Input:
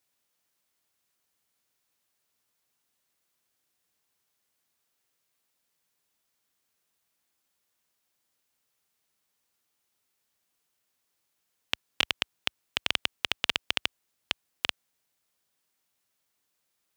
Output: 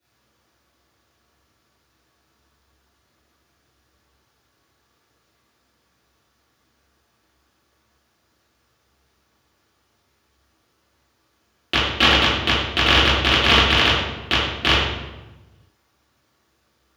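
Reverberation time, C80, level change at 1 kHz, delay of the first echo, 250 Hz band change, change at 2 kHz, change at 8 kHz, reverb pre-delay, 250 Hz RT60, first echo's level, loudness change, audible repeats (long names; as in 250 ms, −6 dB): 1.1 s, 1.5 dB, +19.5 dB, no echo audible, +23.0 dB, +14.5 dB, +9.0 dB, 3 ms, 1.3 s, no echo audible, +14.0 dB, no echo audible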